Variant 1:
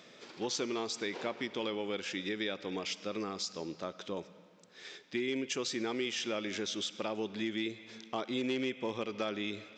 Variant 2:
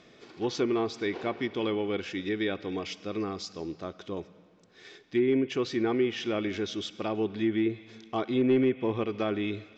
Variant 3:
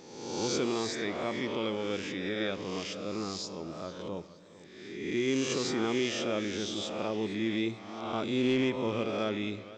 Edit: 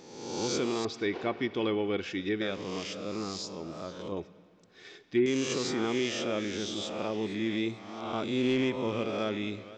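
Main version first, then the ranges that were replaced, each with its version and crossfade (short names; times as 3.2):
3
0.85–2.41 from 2
4.12–5.26 from 2
not used: 1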